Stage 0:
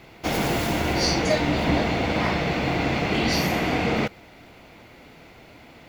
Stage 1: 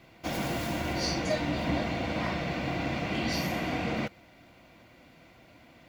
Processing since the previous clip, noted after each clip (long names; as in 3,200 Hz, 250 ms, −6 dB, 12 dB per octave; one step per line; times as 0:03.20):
notch comb filter 430 Hz
level −7 dB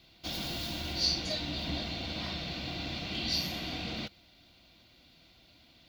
octave-band graphic EQ 125/250/500/1,000/2,000/4,000/8,000 Hz −7/−5/−9/−8/−10/+12/−8 dB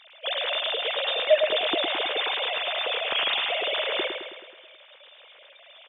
three sine waves on the formant tracks
repeating echo 107 ms, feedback 56%, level −6 dB
level +8 dB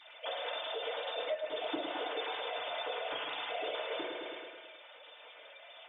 dynamic equaliser 2,300 Hz, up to −4 dB, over −39 dBFS, Q 0.85
downward compressor 4 to 1, threshold −35 dBFS, peak gain reduction 17.5 dB
feedback delay network reverb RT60 0.34 s, low-frequency decay 0.95×, high-frequency decay 0.3×, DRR −5 dB
level −6.5 dB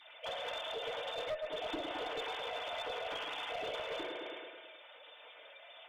asymmetric clip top −35 dBFS
level −1.5 dB